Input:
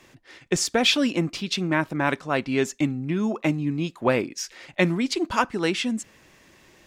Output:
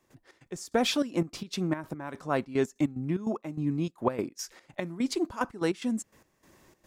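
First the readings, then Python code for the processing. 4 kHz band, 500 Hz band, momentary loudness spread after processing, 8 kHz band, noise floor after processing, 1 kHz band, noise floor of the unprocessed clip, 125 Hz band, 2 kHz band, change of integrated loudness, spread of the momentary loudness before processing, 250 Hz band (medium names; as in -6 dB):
-10.5 dB, -5.5 dB, 11 LU, -9.0 dB, -71 dBFS, -7.0 dB, -56 dBFS, -6.0 dB, -12.0 dB, -6.5 dB, 8 LU, -5.5 dB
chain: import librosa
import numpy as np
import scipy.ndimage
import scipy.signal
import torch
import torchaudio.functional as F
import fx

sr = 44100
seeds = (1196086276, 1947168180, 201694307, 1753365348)

y = fx.curve_eq(x, sr, hz=(1100.0, 2700.0, 12000.0), db=(0, -9, 3))
y = fx.step_gate(y, sr, bpm=147, pattern='.xx.x..xxx.x.x', floor_db=-12.0, edge_ms=4.5)
y = y * librosa.db_to_amplitude(-3.0)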